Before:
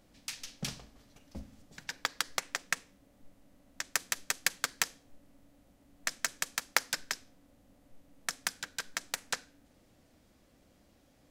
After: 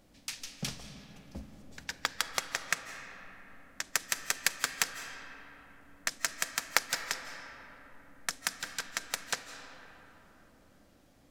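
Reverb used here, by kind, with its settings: algorithmic reverb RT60 3.8 s, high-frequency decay 0.45×, pre-delay 120 ms, DRR 8 dB; trim +1 dB

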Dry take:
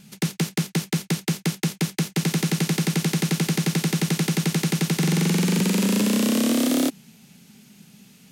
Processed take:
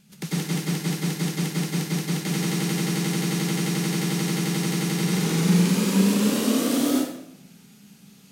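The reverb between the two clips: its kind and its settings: plate-style reverb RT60 0.77 s, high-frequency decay 0.75×, pre-delay 85 ms, DRR -8 dB; trim -9 dB

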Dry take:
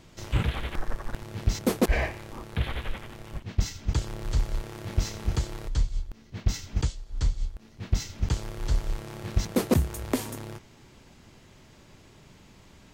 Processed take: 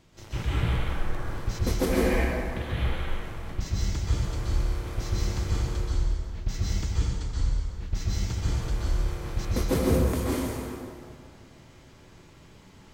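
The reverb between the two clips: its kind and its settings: plate-style reverb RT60 2.2 s, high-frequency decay 0.6×, pre-delay 115 ms, DRR -7.5 dB; trim -7 dB

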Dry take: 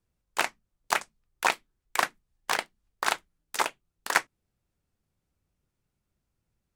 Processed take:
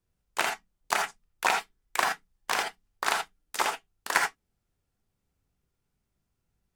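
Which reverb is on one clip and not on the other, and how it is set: gated-style reverb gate 100 ms rising, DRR 2 dB; trim -1.5 dB

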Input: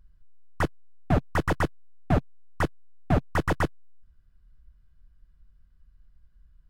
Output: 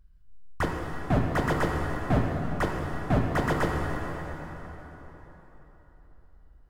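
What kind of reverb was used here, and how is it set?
plate-style reverb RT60 4.1 s, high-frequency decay 0.75×, DRR -0.5 dB; trim -2 dB

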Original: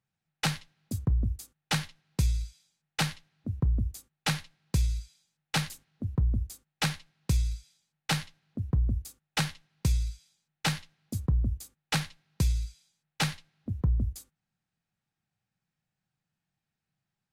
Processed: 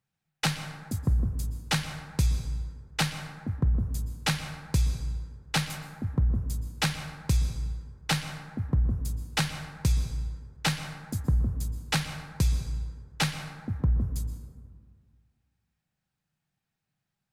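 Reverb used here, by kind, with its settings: plate-style reverb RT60 1.9 s, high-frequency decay 0.35×, pre-delay 110 ms, DRR 9 dB; trim +1.5 dB

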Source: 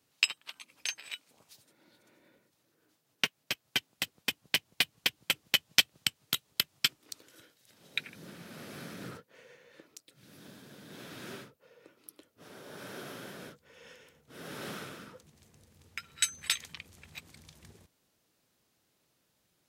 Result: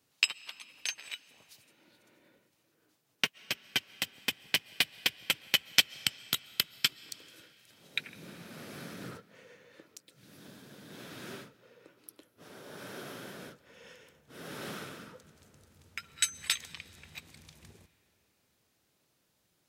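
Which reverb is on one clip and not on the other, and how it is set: algorithmic reverb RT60 4.1 s, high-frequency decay 0.7×, pre-delay 95 ms, DRR 19.5 dB

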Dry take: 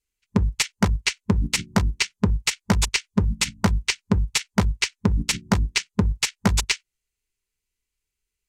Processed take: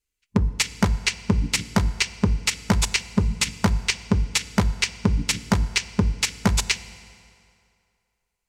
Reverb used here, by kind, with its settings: FDN reverb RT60 2.5 s, low-frequency decay 0.8×, high-frequency decay 0.75×, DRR 14.5 dB

